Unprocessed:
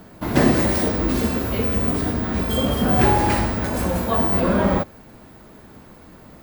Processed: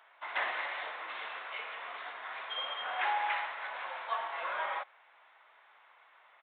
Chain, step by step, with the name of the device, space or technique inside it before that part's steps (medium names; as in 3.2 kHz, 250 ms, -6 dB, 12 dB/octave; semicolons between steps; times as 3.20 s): musical greeting card (resampled via 8 kHz; high-pass 860 Hz 24 dB/octave; peaking EQ 2.1 kHz +5 dB 0.22 oct); trim -7.5 dB